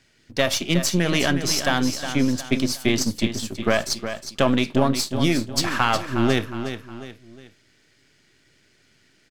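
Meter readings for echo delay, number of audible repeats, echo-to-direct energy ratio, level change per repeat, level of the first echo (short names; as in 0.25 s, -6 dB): 0.362 s, 3, -9.0 dB, -8.0 dB, -9.5 dB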